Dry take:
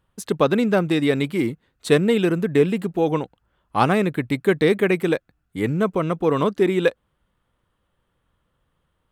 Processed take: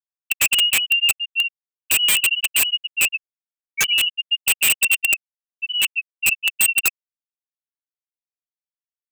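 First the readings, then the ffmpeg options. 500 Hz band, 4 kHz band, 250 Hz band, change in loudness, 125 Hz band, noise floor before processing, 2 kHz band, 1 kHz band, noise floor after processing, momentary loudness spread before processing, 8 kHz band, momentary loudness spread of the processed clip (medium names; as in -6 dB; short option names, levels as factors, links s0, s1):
-27.0 dB, +17.0 dB, -29.0 dB, +3.0 dB, under -20 dB, -72 dBFS, +8.5 dB, -13.5 dB, under -85 dBFS, 9 LU, no reading, 8 LU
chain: -af "lowpass=f=2600:t=q:w=0.5098,lowpass=f=2600:t=q:w=0.6013,lowpass=f=2600:t=q:w=0.9,lowpass=f=2600:t=q:w=2.563,afreqshift=-3100,afftfilt=real='re*gte(hypot(re,im),0.794)':imag='im*gte(hypot(re,im),0.794)':win_size=1024:overlap=0.75,aeval=exprs='(mod(5.31*val(0)+1,2)-1)/5.31':c=same,volume=1.5"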